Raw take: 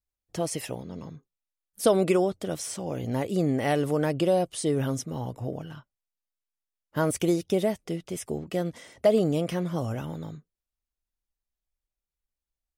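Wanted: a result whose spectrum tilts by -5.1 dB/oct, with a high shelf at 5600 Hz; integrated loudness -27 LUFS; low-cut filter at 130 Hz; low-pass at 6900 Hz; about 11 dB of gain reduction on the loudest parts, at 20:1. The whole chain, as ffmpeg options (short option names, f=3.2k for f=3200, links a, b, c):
-af "highpass=130,lowpass=6.9k,highshelf=f=5.6k:g=5.5,acompressor=threshold=-26dB:ratio=20,volume=6.5dB"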